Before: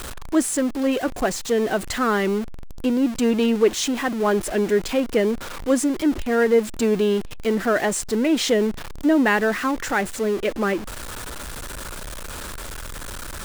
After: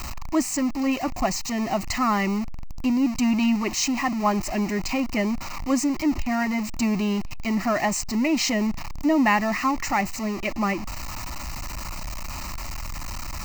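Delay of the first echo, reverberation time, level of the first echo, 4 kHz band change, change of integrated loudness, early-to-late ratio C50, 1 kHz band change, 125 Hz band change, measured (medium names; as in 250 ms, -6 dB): no echo, no reverb, no echo, -1.5 dB, -3.5 dB, no reverb, +1.5 dB, +1.0 dB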